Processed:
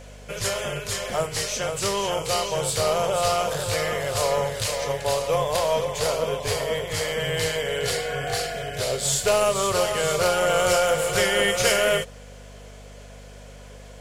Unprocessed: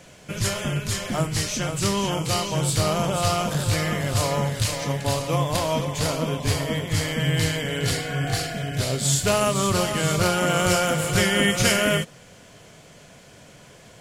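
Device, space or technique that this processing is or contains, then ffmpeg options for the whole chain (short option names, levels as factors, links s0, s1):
valve amplifier with mains hum: -af "lowshelf=f=360:t=q:w=3:g=-8,aeval=exprs='(tanh(2.82*val(0)+0.15)-tanh(0.15))/2.82':c=same,aeval=exprs='val(0)+0.00708*(sin(2*PI*50*n/s)+sin(2*PI*2*50*n/s)/2+sin(2*PI*3*50*n/s)/3+sin(2*PI*4*50*n/s)/4+sin(2*PI*5*50*n/s)/5)':c=same"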